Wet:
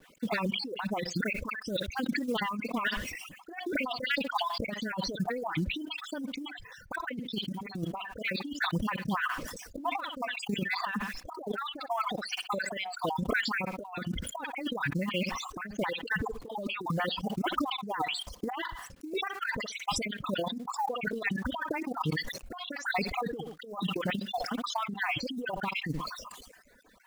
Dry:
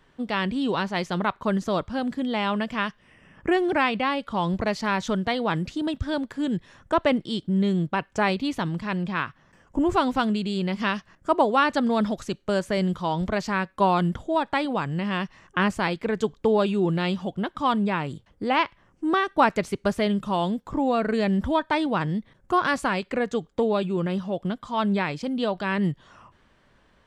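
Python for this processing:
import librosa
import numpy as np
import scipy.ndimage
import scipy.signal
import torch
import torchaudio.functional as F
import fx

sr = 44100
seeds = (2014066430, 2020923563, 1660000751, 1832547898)

y = fx.spec_dropout(x, sr, seeds[0], share_pct=55)
y = fx.env_lowpass_down(y, sr, base_hz=2700.0, full_db=-25.5)
y = fx.low_shelf(y, sr, hz=130.0, db=-11.5)
y = y + 0.39 * np.pad(y, (int(4.0 * sr / 1000.0), 0))[:len(y)]
y = fx.dispersion(y, sr, late='highs', ms=41.0, hz=1900.0)
y = fx.quant_companded(y, sr, bits=6)
y = fx.echo_feedback(y, sr, ms=62, feedback_pct=18, wet_db=-15)
y = fx.dereverb_blind(y, sr, rt60_s=0.6)
y = fx.peak_eq(y, sr, hz=700.0, db=-8.5, octaves=0.89, at=(1.13, 2.63))
y = fx.over_compress(y, sr, threshold_db=-32.0, ratio=-0.5)
y = fx.dereverb_blind(y, sr, rt60_s=1.7)
y = fx.sustainer(y, sr, db_per_s=46.0)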